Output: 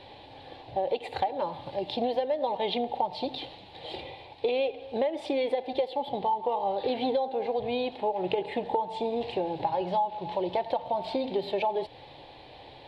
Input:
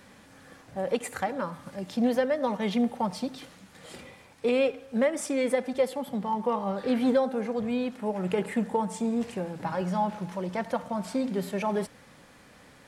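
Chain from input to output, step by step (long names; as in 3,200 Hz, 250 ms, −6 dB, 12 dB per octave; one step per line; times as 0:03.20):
drawn EQ curve 130 Hz 0 dB, 210 Hz −16 dB, 340 Hz +4 dB, 510 Hz +1 dB, 850 Hz +9 dB, 1,300 Hz −16 dB, 2,800 Hz +3 dB, 4,000 Hz +7 dB, 6,100 Hz −23 dB, 10,000 Hz −25 dB
downward compressor 6 to 1, threshold −30 dBFS, peak gain reduction 14 dB
level +5 dB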